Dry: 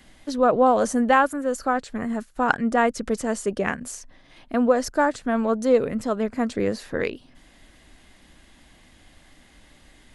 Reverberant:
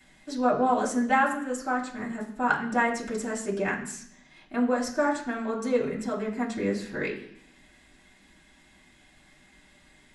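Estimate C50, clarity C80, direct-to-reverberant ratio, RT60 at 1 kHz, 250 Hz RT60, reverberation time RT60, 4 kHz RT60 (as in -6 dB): 9.0 dB, 11.5 dB, -5.0 dB, 0.65 s, 0.95 s, 0.65 s, 0.80 s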